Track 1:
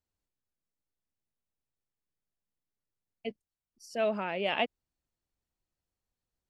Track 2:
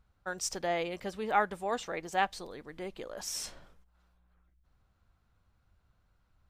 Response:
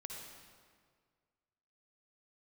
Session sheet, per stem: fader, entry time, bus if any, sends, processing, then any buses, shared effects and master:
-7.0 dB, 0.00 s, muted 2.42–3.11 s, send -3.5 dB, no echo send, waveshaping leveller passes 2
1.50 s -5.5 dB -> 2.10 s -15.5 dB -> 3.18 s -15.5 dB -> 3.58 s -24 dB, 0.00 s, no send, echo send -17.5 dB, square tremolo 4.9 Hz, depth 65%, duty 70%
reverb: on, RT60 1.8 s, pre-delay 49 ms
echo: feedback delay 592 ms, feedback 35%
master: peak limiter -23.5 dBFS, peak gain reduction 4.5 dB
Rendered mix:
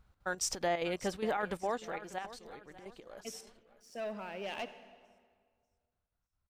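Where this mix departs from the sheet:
stem 1 -7.0 dB -> -18.0 dB; stem 2 -5.5 dB -> +3.0 dB

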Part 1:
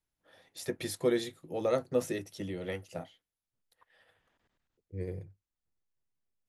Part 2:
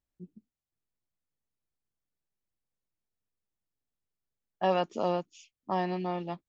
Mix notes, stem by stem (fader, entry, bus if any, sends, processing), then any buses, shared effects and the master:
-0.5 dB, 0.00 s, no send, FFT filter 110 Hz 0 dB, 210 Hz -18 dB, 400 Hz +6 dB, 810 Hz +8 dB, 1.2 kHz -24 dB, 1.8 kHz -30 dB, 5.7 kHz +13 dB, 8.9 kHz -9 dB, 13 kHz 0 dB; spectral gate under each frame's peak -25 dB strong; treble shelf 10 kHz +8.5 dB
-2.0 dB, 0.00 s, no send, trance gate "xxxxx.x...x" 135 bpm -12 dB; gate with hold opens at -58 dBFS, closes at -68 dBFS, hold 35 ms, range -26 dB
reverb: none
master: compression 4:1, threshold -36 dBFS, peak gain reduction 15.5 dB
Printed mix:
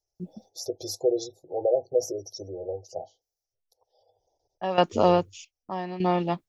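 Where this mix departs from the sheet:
stem 2 -2.0 dB -> +9.5 dB; master: missing compression 4:1, threshold -36 dBFS, peak gain reduction 15.5 dB

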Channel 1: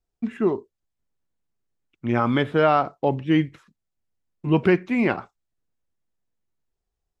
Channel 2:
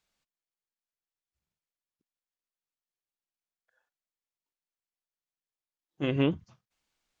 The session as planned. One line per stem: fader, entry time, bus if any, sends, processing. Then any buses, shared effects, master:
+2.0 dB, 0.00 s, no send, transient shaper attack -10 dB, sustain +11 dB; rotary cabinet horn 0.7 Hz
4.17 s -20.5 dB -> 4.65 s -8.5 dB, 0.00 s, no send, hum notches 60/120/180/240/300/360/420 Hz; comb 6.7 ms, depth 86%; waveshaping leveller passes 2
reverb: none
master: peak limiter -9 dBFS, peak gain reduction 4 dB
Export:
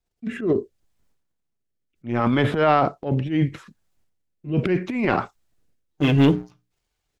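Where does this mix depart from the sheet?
stem 2 -20.5 dB -> -10.0 dB; master: missing peak limiter -9 dBFS, peak gain reduction 4 dB

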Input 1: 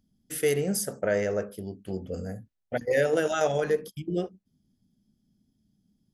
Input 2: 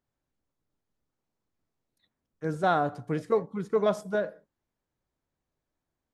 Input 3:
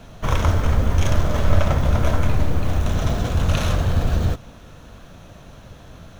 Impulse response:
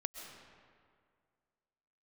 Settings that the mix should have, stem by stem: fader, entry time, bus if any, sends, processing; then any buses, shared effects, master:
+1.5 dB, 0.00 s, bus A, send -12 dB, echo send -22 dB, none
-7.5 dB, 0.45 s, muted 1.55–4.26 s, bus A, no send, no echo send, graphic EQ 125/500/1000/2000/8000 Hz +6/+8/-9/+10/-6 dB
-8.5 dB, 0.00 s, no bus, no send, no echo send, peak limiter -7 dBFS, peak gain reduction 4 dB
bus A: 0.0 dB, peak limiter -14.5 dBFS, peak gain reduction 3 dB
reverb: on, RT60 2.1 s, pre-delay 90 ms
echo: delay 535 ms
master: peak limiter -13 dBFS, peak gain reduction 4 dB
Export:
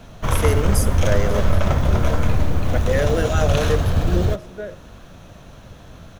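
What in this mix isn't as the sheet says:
stem 3 -8.5 dB -> +0.5 dB; master: missing peak limiter -13 dBFS, peak gain reduction 4 dB

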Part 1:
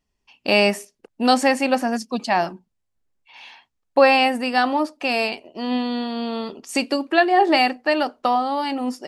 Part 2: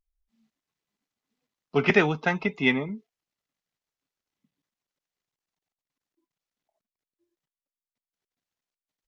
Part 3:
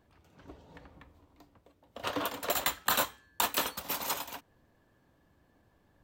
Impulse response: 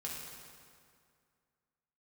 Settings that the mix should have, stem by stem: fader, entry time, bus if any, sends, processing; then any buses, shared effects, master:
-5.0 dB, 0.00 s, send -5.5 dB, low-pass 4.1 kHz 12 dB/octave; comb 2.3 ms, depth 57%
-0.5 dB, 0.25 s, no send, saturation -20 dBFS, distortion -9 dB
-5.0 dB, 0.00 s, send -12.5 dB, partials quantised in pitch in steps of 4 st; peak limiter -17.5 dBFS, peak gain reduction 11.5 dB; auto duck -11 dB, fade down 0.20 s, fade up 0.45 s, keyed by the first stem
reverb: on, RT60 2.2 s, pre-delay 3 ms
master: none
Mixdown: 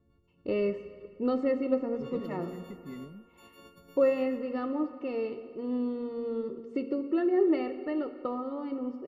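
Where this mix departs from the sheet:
stem 2 -0.5 dB -> -12.5 dB; stem 3 -5.0 dB -> +1.5 dB; master: extra boxcar filter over 54 samples

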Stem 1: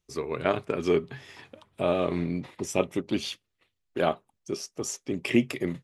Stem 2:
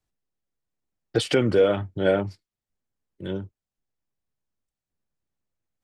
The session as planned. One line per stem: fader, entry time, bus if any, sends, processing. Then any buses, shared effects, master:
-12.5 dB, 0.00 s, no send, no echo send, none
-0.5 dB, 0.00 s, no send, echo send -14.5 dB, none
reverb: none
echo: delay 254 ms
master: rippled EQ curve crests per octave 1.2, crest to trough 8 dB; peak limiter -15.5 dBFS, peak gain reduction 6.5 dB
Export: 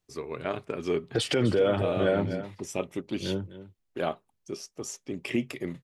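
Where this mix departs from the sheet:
stem 1 -12.5 dB -> -4.5 dB; master: missing rippled EQ curve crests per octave 1.2, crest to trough 8 dB

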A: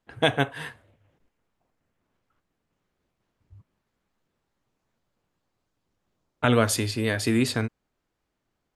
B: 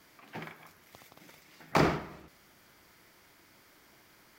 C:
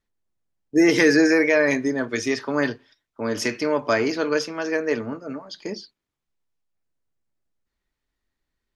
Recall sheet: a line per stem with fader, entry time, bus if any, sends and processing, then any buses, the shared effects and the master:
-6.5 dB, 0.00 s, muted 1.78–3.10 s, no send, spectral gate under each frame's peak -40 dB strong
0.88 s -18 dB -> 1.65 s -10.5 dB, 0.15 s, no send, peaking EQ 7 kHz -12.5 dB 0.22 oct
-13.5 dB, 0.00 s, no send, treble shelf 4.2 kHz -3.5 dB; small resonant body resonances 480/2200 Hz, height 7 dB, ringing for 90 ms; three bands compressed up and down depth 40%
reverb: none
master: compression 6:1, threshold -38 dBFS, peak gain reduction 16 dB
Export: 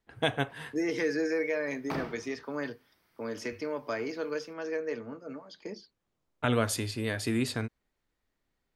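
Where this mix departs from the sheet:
stem A: missing spectral gate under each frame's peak -40 dB strong; master: missing compression 6:1, threshold -38 dBFS, peak gain reduction 16 dB

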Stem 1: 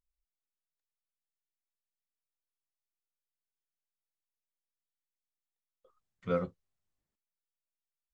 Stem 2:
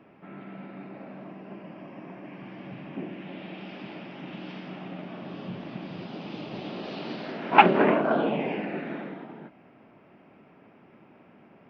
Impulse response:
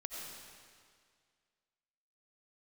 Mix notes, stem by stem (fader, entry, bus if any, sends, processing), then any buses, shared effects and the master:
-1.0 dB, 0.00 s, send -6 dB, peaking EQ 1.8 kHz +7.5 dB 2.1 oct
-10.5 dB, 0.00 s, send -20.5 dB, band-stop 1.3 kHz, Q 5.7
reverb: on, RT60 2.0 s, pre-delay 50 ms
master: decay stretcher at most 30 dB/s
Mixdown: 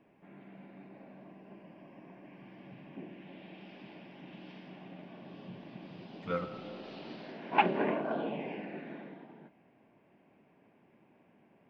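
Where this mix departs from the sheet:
stem 1 -1.0 dB -> -8.0 dB; master: missing decay stretcher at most 30 dB/s

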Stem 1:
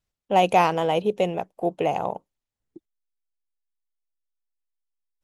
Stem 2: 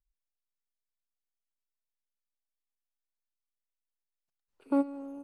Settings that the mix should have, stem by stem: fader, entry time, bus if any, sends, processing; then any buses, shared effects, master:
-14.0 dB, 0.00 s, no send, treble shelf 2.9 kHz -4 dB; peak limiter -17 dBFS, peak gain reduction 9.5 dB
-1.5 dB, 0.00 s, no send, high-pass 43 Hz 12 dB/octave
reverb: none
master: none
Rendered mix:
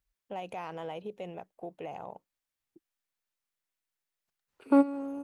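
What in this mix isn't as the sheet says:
stem 2 -1.5 dB -> +5.0 dB; master: extra peaking EQ 1.8 kHz +4 dB 1.3 oct

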